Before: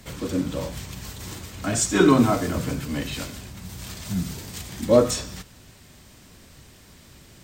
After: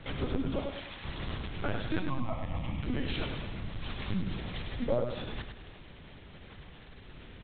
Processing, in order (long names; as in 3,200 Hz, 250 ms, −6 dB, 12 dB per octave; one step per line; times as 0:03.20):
0:00.60–0:01.04: high-pass filter 780 Hz 6 dB per octave
linear-prediction vocoder at 8 kHz pitch kept
downward compressor 4 to 1, threshold −29 dBFS, peak gain reduction 16 dB
0:01.99–0:02.83: phaser with its sweep stopped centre 1,500 Hz, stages 6
repeating echo 102 ms, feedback 40%, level −7 dB